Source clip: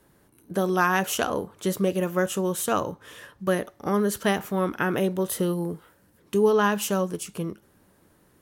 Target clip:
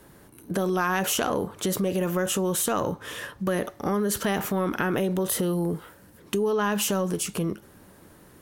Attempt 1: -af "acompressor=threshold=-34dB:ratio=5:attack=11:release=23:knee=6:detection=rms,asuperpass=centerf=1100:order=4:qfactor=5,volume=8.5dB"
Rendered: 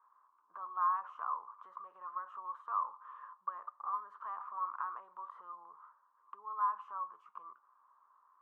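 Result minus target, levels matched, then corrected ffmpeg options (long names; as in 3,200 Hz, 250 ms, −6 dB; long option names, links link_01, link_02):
1,000 Hz band +8.5 dB
-af "acompressor=threshold=-34dB:ratio=5:attack=11:release=23:knee=6:detection=rms,volume=8.5dB"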